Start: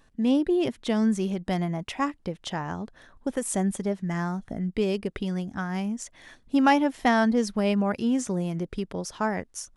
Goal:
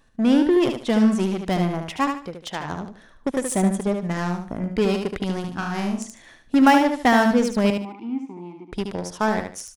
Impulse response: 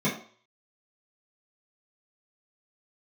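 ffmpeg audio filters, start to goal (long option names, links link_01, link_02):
-filter_complex "[0:a]asettb=1/sr,asplit=3[link_01][link_02][link_03];[link_01]atrim=end=2.244[link_04];[link_02]atrim=start=2.24:end=2.65,asetpts=PTS-STARTPTS,afade=type=in:duration=0.004:curve=qsin,afade=type=out:start_time=0.406:duration=0.004:curve=qsin,lowshelf=frequency=250:gain=-7.5[link_05];[link_03]atrim=start=2.646[link_06];[link_04][link_05]acrossfade=duration=0.004:curve1=hsin:curve2=qsin[link_07];[link_07][link_06]acrossfade=duration=0.004:curve1=qsin:curve2=hsin,asplit=2[link_08][link_09];[link_09]acrusher=bits=3:mix=0:aa=0.5,volume=-4dB[link_10];[link_08][link_10]amix=inputs=2:normalize=0,asettb=1/sr,asplit=3[link_11][link_12][link_13];[link_11]atrim=end=5.404[link_14];[link_12]atrim=start=5.4:end=5.99,asetpts=PTS-STARTPTS,afade=type=in:duration=0.004:curve=qsin,afade=type=out:start_time=0.586:duration=0.004:curve=qsin,asplit=2[link_15][link_16];[link_16]adelay=40,volume=-4dB[link_17];[link_15][link_17]amix=inputs=2:normalize=0,atrim=end_sample=26019[link_18];[link_13]atrim=start=5.986[link_19];[link_14][link_18]acrossfade=duration=0.004:curve1=hsin:curve2=qsin[link_20];[link_20][link_19]acrossfade=duration=0.004:curve1=qsin:curve2=hsin,asettb=1/sr,asplit=3[link_21][link_22][link_23];[link_21]atrim=end=7.704[link_24];[link_22]atrim=start=7.7:end=8.72,asetpts=PTS-STARTPTS,afade=type=in:duration=0.004:curve=qsin,afade=type=out:start_time=1.016:duration=0.004:curve=qsin,asplit=3[link_25][link_26][link_27];[link_25]bandpass=frequency=300:width_type=q:width=8,volume=0dB[link_28];[link_26]bandpass=frequency=870:width_type=q:width=8,volume=-6dB[link_29];[link_27]bandpass=frequency=2240:width_type=q:width=8,volume=-9dB[link_30];[link_28][link_29][link_30]amix=inputs=3:normalize=0[link_31];[link_23]atrim=start=8.716[link_32];[link_24][link_31]acrossfade=duration=0.004:curve1=hsin:curve2=qsin[link_33];[link_33][link_32]acrossfade=duration=0.004:curve1=qsin:curve2=hsin,aecho=1:1:74|148|222:0.501|0.135|0.0365"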